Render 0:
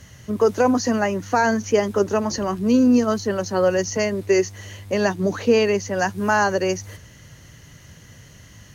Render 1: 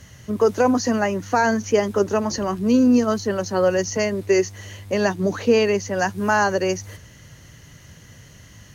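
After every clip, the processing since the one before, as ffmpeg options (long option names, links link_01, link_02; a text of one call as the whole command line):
ffmpeg -i in.wav -af anull out.wav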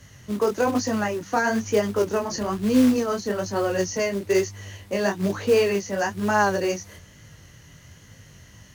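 ffmpeg -i in.wav -filter_complex "[0:a]flanger=delay=19:depth=6.8:speed=1.1,acrossover=split=560[link_01][link_02];[link_01]acrusher=bits=4:mode=log:mix=0:aa=0.000001[link_03];[link_03][link_02]amix=inputs=2:normalize=0" out.wav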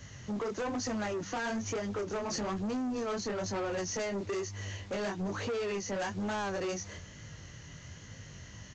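ffmpeg -i in.wav -af "acompressor=threshold=-25dB:ratio=6,aresample=16000,asoftclip=type=tanh:threshold=-31dB,aresample=44100" out.wav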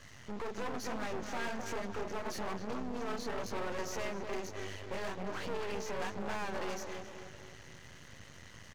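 ffmpeg -i in.wav -filter_complex "[0:a]asplit=2[link_01][link_02];[link_02]highpass=frequency=720:poles=1,volume=9dB,asoftclip=type=tanh:threshold=-26.5dB[link_03];[link_01][link_03]amix=inputs=2:normalize=0,lowpass=frequency=2700:poles=1,volume=-6dB,asplit=2[link_04][link_05];[link_05]adelay=262,lowpass=frequency=1500:poles=1,volume=-5dB,asplit=2[link_06][link_07];[link_07]adelay=262,lowpass=frequency=1500:poles=1,volume=0.52,asplit=2[link_08][link_09];[link_09]adelay=262,lowpass=frequency=1500:poles=1,volume=0.52,asplit=2[link_10][link_11];[link_11]adelay=262,lowpass=frequency=1500:poles=1,volume=0.52,asplit=2[link_12][link_13];[link_13]adelay=262,lowpass=frequency=1500:poles=1,volume=0.52,asplit=2[link_14][link_15];[link_15]adelay=262,lowpass=frequency=1500:poles=1,volume=0.52,asplit=2[link_16][link_17];[link_17]adelay=262,lowpass=frequency=1500:poles=1,volume=0.52[link_18];[link_04][link_06][link_08][link_10][link_12][link_14][link_16][link_18]amix=inputs=8:normalize=0,aeval=exprs='max(val(0),0)':channel_layout=same" out.wav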